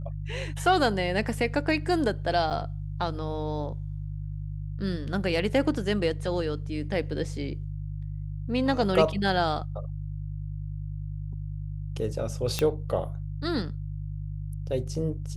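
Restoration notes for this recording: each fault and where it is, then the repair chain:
hum 50 Hz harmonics 3 -34 dBFS
2.50–2.51 s: dropout 8.2 ms
12.59 s: pop -11 dBFS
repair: de-click; de-hum 50 Hz, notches 3; interpolate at 2.50 s, 8.2 ms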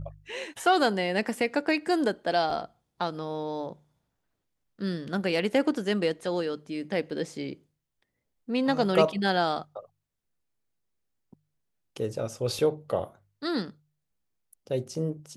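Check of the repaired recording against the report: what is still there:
nothing left

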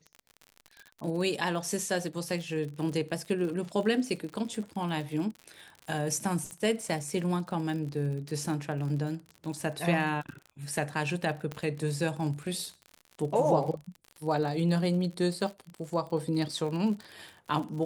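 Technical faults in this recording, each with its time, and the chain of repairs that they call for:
crackle 56 per s -37 dBFS
6.51 s: pop -26 dBFS
11.52 s: pop -22 dBFS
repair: de-click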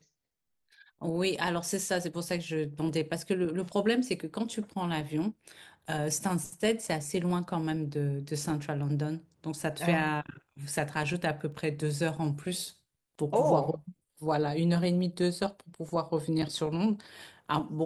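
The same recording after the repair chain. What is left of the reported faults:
11.52 s: pop

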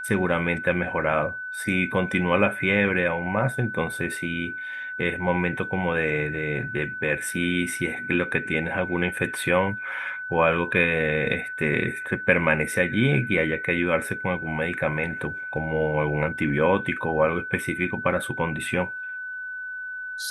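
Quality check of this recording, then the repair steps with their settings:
whine 1.5 kHz -31 dBFS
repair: band-stop 1.5 kHz, Q 30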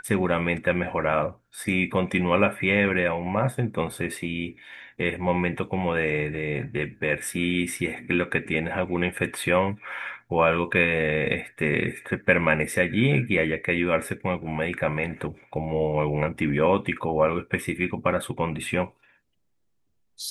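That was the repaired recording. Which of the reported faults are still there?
nothing left

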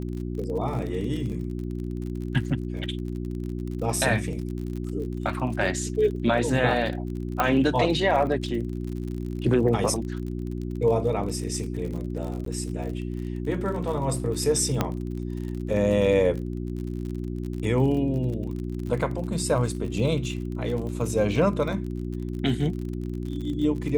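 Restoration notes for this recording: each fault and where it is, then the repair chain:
crackle 45 per s -33 dBFS
hum 60 Hz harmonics 6 -31 dBFS
7.40 s: pop -9 dBFS
12.45–12.46 s: dropout 13 ms
14.81 s: pop -9 dBFS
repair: de-click; de-hum 60 Hz, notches 6; interpolate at 12.45 s, 13 ms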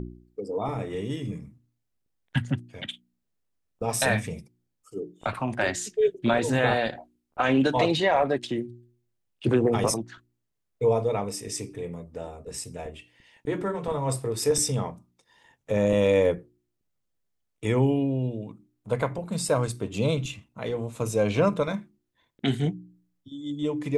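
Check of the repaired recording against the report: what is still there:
nothing left

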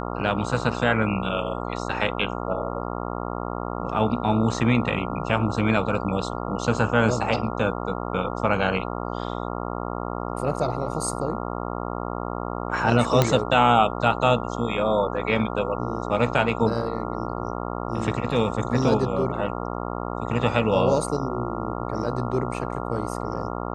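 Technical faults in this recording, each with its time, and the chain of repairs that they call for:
buzz 60 Hz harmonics 23 -30 dBFS
13.22 s: pop -4 dBFS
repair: de-click; de-hum 60 Hz, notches 23

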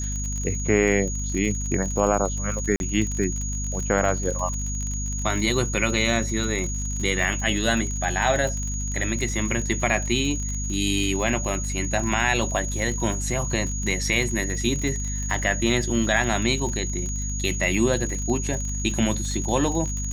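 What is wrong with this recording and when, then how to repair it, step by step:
crackle 49 per s -28 dBFS
hum 50 Hz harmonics 5 -29 dBFS
whine 6.7 kHz -31 dBFS
2.76–2.80 s: dropout 41 ms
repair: de-click; band-stop 6.7 kHz, Q 30; de-hum 50 Hz, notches 5; interpolate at 2.76 s, 41 ms

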